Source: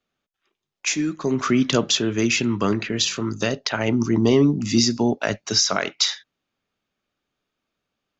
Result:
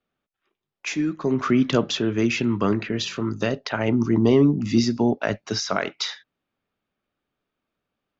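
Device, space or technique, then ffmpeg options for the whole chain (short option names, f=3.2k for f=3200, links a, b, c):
through cloth: -af "lowpass=6.5k,highshelf=f=3.7k:g=-11.5"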